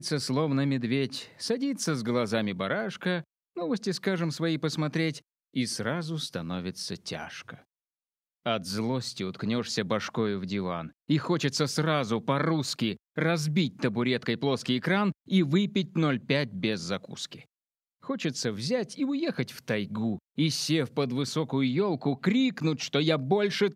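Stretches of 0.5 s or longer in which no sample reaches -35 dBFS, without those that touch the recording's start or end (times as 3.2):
7.54–8.46
17.35–18.07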